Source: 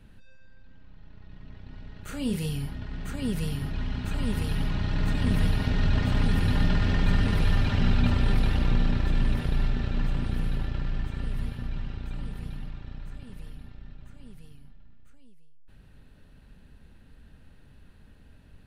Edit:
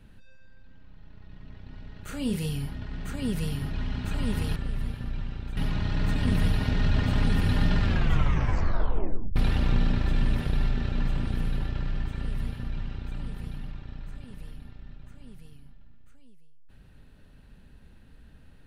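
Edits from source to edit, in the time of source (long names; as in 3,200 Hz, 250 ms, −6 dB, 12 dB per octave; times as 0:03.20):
0:06.80: tape stop 1.55 s
0:11.14–0:12.15: duplicate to 0:04.56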